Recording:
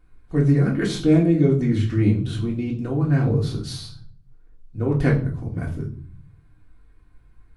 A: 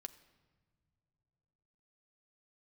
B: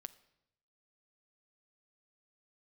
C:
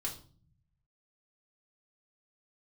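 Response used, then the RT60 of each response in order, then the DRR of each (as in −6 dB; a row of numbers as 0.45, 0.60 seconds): C; non-exponential decay, 0.80 s, 0.45 s; 10.0, 14.5, −2.5 decibels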